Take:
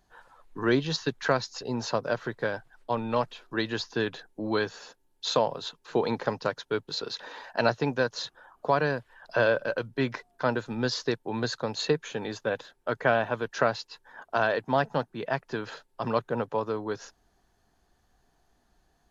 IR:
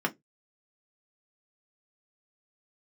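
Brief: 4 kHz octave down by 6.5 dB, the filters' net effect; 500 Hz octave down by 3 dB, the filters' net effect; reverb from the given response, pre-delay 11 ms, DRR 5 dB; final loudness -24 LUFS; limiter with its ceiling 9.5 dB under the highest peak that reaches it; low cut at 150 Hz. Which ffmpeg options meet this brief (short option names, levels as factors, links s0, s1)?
-filter_complex "[0:a]highpass=150,equalizer=f=500:t=o:g=-3.5,equalizer=f=4000:t=o:g=-7.5,alimiter=limit=0.0841:level=0:latency=1,asplit=2[s0][s1];[1:a]atrim=start_sample=2205,adelay=11[s2];[s1][s2]afir=irnorm=-1:irlink=0,volume=0.2[s3];[s0][s3]amix=inputs=2:normalize=0,volume=3.16"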